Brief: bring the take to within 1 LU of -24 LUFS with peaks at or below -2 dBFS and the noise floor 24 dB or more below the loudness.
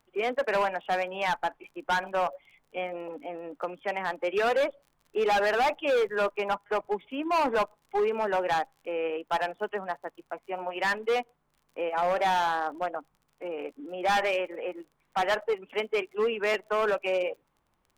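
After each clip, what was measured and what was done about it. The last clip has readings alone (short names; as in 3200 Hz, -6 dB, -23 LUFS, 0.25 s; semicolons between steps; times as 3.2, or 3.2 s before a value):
ticks 33/s; loudness -29.0 LUFS; peak -20.5 dBFS; loudness target -24.0 LUFS
-> de-click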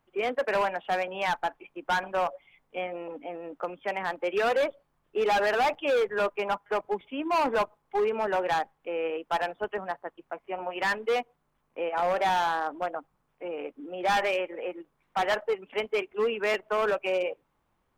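ticks 0.17/s; loudness -29.0 LUFS; peak -16.0 dBFS; loudness target -24.0 LUFS
-> gain +5 dB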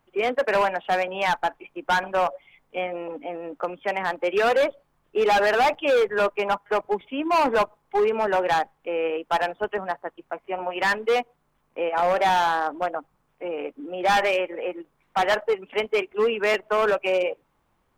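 loudness -24.0 LUFS; peak -11.0 dBFS; noise floor -69 dBFS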